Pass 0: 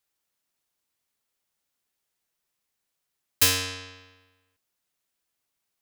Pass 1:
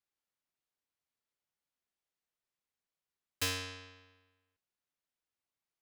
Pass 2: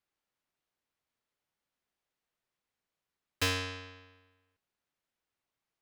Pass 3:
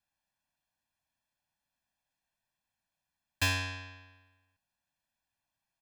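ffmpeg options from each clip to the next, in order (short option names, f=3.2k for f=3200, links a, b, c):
-af "lowpass=f=3.8k:p=1,volume=-9dB"
-af "highshelf=f=5.2k:g=-10,volume=6.5dB"
-af "aecho=1:1:1.2:0.95,volume=-2dB"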